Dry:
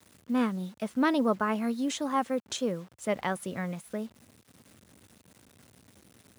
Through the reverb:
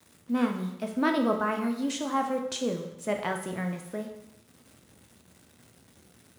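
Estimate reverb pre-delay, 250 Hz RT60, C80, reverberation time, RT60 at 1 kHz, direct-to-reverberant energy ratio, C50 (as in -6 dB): 6 ms, 0.95 s, 9.5 dB, 0.85 s, 0.85 s, 3.0 dB, 7.0 dB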